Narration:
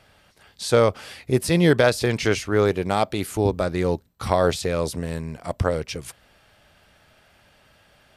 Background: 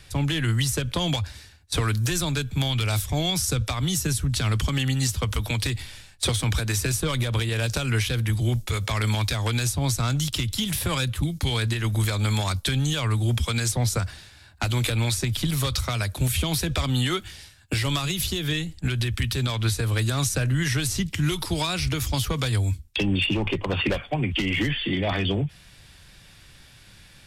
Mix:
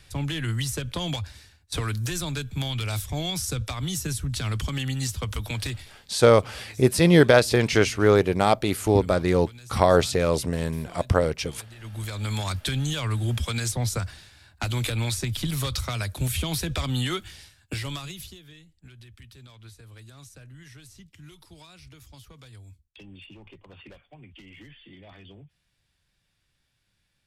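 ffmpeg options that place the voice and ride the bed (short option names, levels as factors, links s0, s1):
-filter_complex "[0:a]adelay=5500,volume=1.19[s0];[1:a]volume=5.01,afade=t=out:st=5.7:d=0.38:silence=0.141254,afade=t=in:st=11.73:d=0.77:silence=0.11885,afade=t=out:st=17.39:d=1.05:silence=0.0944061[s1];[s0][s1]amix=inputs=2:normalize=0"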